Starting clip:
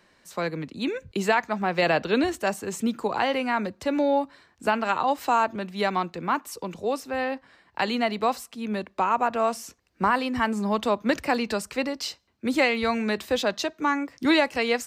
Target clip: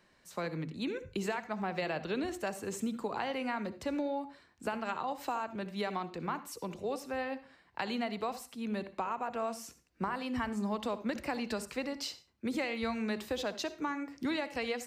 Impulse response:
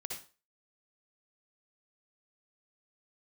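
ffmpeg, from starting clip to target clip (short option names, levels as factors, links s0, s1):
-filter_complex "[0:a]acompressor=threshold=0.0562:ratio=6,asplit=2[s0][s1];[1:a]atrim=start_sample=2205,afade=t=out:st=0.26:d=0.01,atrim=end_sample=11907,lowshelf=f=310:g=9.5[s2];[s1][s2]afir=irnorm=-1:irlink=0,volume=0.355[s3];[s0][s3]amix=inputs=2:normalize=0,volume=0.376"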